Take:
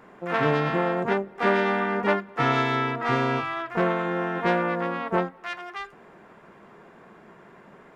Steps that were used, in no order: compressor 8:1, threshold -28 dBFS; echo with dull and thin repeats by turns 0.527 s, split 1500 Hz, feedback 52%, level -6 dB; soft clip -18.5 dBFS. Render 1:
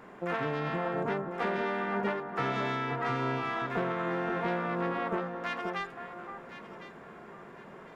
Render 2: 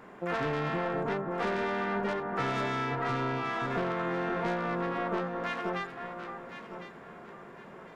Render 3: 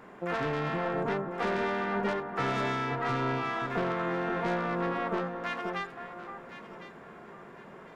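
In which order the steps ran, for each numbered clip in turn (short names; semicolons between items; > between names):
compressor > soft clip > echo with dull and thin repeats by turns; soft clip > echo with dull and thin repeats by turns > compressor; soft clip > compressor > echo with dull and thin repeats by turns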